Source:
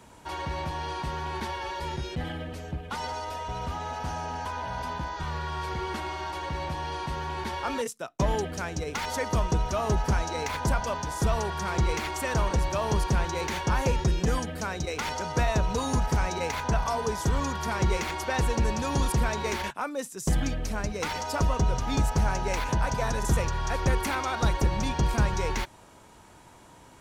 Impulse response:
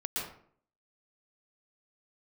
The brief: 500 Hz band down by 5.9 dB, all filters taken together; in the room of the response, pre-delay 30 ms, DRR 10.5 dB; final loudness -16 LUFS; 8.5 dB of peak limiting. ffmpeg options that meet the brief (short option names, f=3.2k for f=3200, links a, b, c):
-filter_complex "[0:a]equalizer=f=500:t=o:g=-7.5,alimiter=limit=-23.5dB:level=0:latency=1,asplit=2[a][b];[1:a]atrim=start_sample=2205,adelay=30[c];[b][c]afir=irnorm=-1:irlink=0,volume=-14.5dB[d];[a][d]amix=inputs=2:normalize=0,volume=17dB"